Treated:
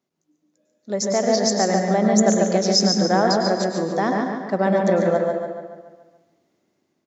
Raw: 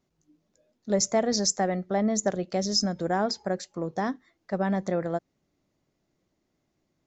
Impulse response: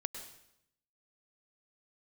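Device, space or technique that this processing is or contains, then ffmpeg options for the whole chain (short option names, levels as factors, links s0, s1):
far laptop microphone: -filter_complex "[0:a]asettb=1/sr,asplit=3[s0][s1][s2];[s0]atrim=end=1.034[s3];[s1]atrim=start=1.03:end=1.96,asetpts=PTS-STARTPTS,afade=t=in:d=0.004:c=qsin,afade=t=out:st=0.926:d=0.004:c=qsin,lowpass=6100[s4];[s2]atrim=start=1.956[s5];[s3][s4]acrossfade=d=0.004:c1=hsin:c2=qsin[s6];[s6][s5]acrossfade=d=0.004:c1=qsin:c2=hsin[s7];[1:a]atrim=start_sample=2205[s8];[s7][s8]afir=irnorm=-1:irlink=0,highpass=190,dynaudnorm=f=500:g=5:m=3.16,asplit=2[s9][s10];[s10]adelay=142,lowpass=f=4700:p=1,volume=0.631,asplit=2[s11][s12];[s12]adelay=142,lowpass=f=4700:p=1,volume=0.54,asplit=2[s13][s14];[s14]adelay=142,lowpass=f=4700:p=1,volume=0.54,asplit=2[s15][s16];[s16]adelay=142,lowpass=f=4700:p=1,volume=0.54,asplit=2[s17][s18];[s18]adelay=142,lowpass=f=4700:p=1,volume=0.54,asplit=2[s19][s20];[s20]adelay=142,lowpass=f=4700:p=1,volume=0.54,asplit=2[s21][s22];[s22]adelay=142,lowpass=f=4700:p=1,volume=0.54[s23];[s9][s11][s13][s15][s17][s19][s21][s23]amix=inputs=8:normalize=0,volume=0.841"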